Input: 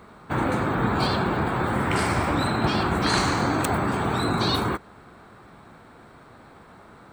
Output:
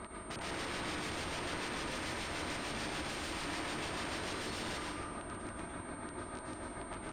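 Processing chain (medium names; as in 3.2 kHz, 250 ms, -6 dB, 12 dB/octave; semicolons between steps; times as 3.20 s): comb 3.2 ms, depth 45%; de-hum 150.2 Hz, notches 11; reverse; compression 6:1, threshold -35 dBFS, peak gain reduction 16.5 dB; reverse; square tremolo 6.8 Hz, depth 60%, duty 45%; integer overflow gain 38.5 dB; whistle 8.7 kHz -47 dBFS; distance through air 88 m; reverberation RT60 1.3 s, pre-delay 97 ms, DRR -2.5 dB; trim +2 dB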